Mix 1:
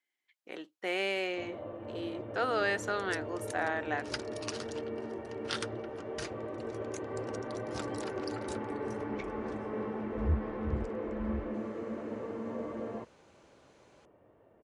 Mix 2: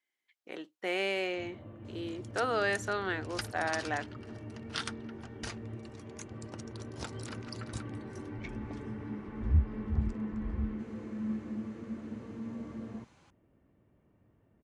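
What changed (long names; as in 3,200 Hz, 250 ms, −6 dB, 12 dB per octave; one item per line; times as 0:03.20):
first sound: add drawn EQ curve 220 Hz 0 dB, 520 Hz −15 dB, 2,100 Hz −5 dB
second sound: entry −0.75 s
master: add low-shelf EQ 170 Hz +5 dB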